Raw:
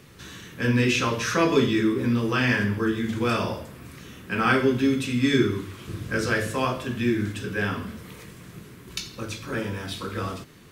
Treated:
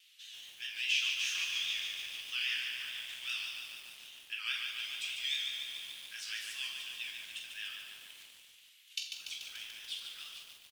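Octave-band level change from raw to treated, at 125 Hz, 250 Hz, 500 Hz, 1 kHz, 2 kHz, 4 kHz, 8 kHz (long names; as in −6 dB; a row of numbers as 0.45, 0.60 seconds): below −40 dB, below −40 dB, below −40 dB, −28.5 dB, −10.5 dB, −0.5 dB, −6.5 dB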